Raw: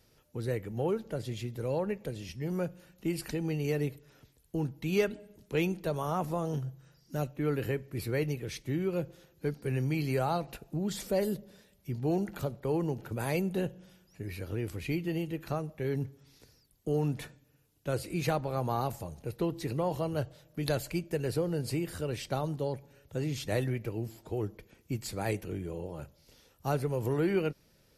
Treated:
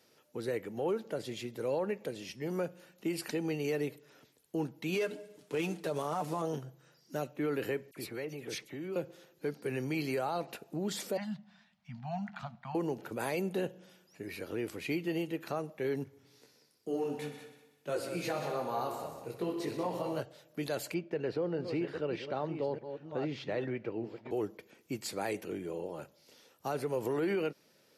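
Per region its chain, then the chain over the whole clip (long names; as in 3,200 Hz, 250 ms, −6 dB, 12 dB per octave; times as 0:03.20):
0:04.94–0:06.42: variable-slope delta modulation 64 kbit/s + comb filter 6.8 ms, depth 61%
0:07.91–0:08.96: downward compressor 12 to 1, threshold −34 dBFS + all-pass dispersion lows, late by 53 ms, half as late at 2,300 Hz
0:11.17–0:12.75: Chebyshev band-stop filter 230–680 Hz, order 4 + high-frequency loss of the air 170 metres
0:16.04–0:20.20: echo machine with several playback heads 62 ms, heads all three, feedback 42%, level −11 dB + micro pitch shift up and down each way 19 cents
0:20.94–0:24.31: delay that plays each chunk backwards 615 ms, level −9.5 dB + high-frequency loss of the air 250 metres
whole clip: high-pass filter 260 Hz 12 dB per octave; high-shelf EQ 9,200 Hz −5 dB; brickwall limiter −26.5 dBFS; level +2 dB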